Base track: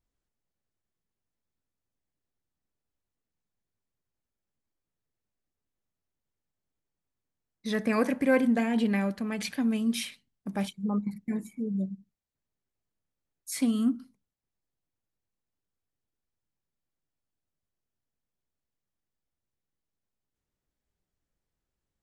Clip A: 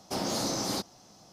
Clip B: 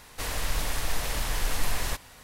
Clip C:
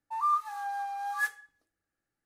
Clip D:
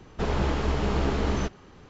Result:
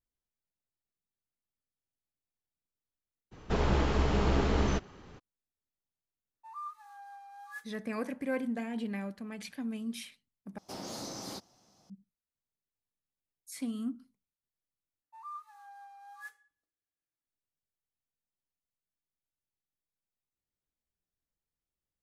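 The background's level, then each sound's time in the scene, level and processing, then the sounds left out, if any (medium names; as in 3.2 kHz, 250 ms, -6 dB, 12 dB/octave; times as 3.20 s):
base track -10 dB
3.31 s: add D -2 dB, fades 0.02 s
6.33 s: add C -15 dB
10.58 s: replace with A -10.5 dB
15.02 s: replace with C -17 dB
not used: B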